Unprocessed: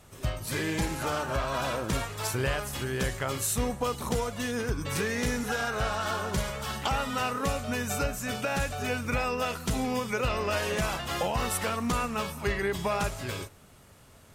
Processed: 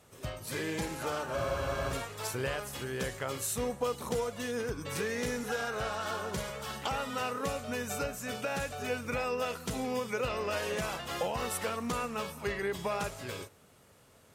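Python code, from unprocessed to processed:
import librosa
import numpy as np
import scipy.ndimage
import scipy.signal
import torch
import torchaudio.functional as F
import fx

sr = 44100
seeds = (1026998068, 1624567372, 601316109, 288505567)

y = fx.highpass(x, sr, hz=120.0, slope=6)
y = fx.peak_eq(y, sr, hz=480.0, db=5.0, octaves=0.37)
y = fx.spec_freeze(y, sr, seeds[0], at_s=1.38, hold_s=0.54)
y = y * librosa.db_to_amplitude(-5.0)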